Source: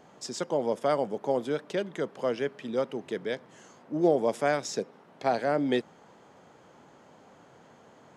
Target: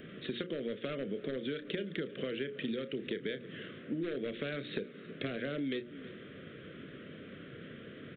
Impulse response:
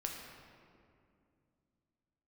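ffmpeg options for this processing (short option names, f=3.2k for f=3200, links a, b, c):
-filter_complex "[0:a]equalizer=f=620:t=o:w=0.77:g=-2.5,asplit=2[a][b];[b]adelay=30,volume=-14dB[c];[a][c]amix=inputs=2:normalize=0,aresample=8000,asoftclip=type=hard:threshold=-21.5dB,aresample=44100,acompressor=threshold=-35dB:ratio=6,asuperstop=centerf=870:order=4:qfactor=0.81,bandreject=f=60:t=h:w=6,bandreject=f=120:t=h:w=6,bandreject=f=180:t=h:w=6,bandreject=f=240:t=h:w=6,bandreject=f=300:t=h:w=6,bandreject=f=360:t=h:w=6,bandreject=f=420:t=h:w=6,bandreject=f=480:t=h:w=6,bandreject=f=540:t=h:w=6,aecho=1:1:322:0.075,acrossover=split=1500|3000[d][e][f];[d]acompressor=threshold=-46dB:ratio=4[g];[e]acompressor=threshold=-59dB:ratio=4[h];[f]acompressor=threshold=-58dB:ratio=4[i];[g][h][i]amix=inputs=3:normalize=0,volume=11dB"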